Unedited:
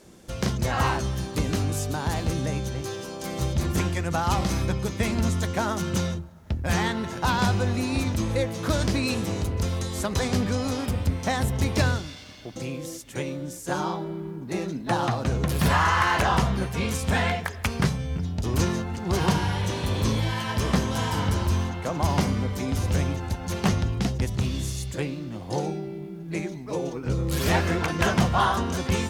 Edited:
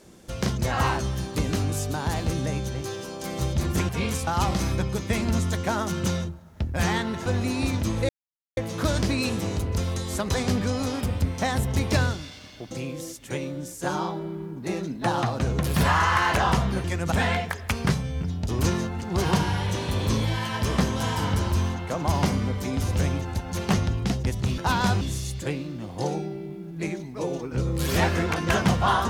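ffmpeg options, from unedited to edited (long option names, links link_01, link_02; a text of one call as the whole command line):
ffmpeg -i in.wav -filter_complex "[0:a]asplit=9[link_01][link_02][link_03][link_04][link_05][link_06][link_07][link_08][link_09];[link_01]atrim=end=3.892[link_10];[link_02]atrim=start=16.688:end=17.072[link_11];[link_03]atrim=start=4.168:end=7.162[link_12];[link_04]atrim=start=7.588:end=8.42,asetpts=PTS-STARTPTS,afade=type=out:start_time=0.828:duration=0.004:curve=hsin,apad=pad_dur=0.48[link_13];[link_05]atrim=start=8.42:end=16.692,asetpts=PTS-STARTPTS,afade=type=in:duration=0.004:curve=hsin[link_14];[link_06]atrim=start=3.888:end=4.172[link_15];[link_07]atrim=start=17.068:end=24.532[link_16];[link_08]atrim=start=7.158:end=7.592[link_17];[link_09]atrim=start=24.528[link_18];[link_10][link_11]acrossfade=duration=0.004:curve1=hsin:curve2=hsin[link_19];[link_19][link_12]acrossfade=duration=0.004:curve1=hsin:curve2=hsin[link_20];[link_13][link_14]concat=n=2:v=0:a=1[link_21];[link_20][link_21]acrossfade=duration=0.004:curve1=hsin:curve2=hsin[link_22];[link_22][link_15]acrossfade=duration=0.004:curve1=hsin:curve2=hsin[link_23];[link_23][link_16]acrossfade=duration=0.004:curve1=hsin:curve2=hsin[link_24];[link_24][link_17]acrossfade=duration=0.004:curve1=hsin:curve2=hsin[link_25];[link_25][link_18]acrossfade=duration=0.004:curve1=hsin:curve2=hsin" out.wav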